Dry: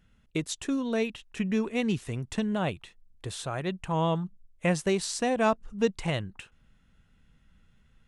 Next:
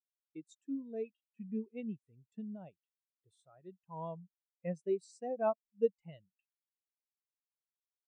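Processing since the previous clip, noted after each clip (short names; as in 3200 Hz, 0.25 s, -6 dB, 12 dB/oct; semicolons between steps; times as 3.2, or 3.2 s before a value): HPF 210 Hz 6 dB/oct; high shelf 4200 Hz +9 dB; spectral expander 2.5:1; gain -6.5 dB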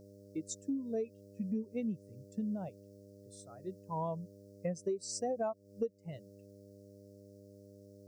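buzz 100 Hz, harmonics 6, -65 dBFS -1 dB/oct; compressor 12:1, threshold -41 dBFS, peak gain reduction 18 dB; resonant high shelf 4000 Hz +9 dB, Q 3; gain +9 dB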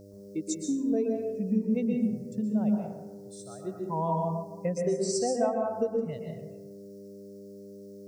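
plate-style reverb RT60 1.1 s, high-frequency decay 0.4×, pre-delay 0.11 s, DRR 0.5 dB; gain +6 dB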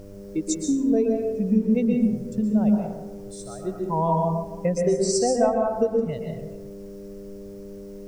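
added noise brown -54 dBFS; gain +6.5 dB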